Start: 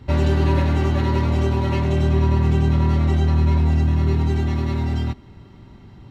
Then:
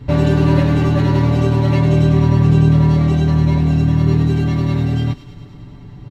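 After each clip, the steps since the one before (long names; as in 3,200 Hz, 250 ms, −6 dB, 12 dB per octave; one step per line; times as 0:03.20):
low-shelf EQ 300 Hz +6.5 dB
comb filter 6.9 ms, depth 82%
delay with a high-pass on its return 103 ms, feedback 71%, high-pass 2,900 Hz, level −11 dB
level +1 dB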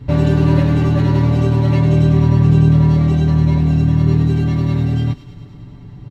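parametric band 110 Hz +3.5 dB 2.6 octaves
level −2.5 dB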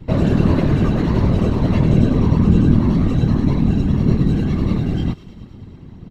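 random phases in short frames
level −2 dB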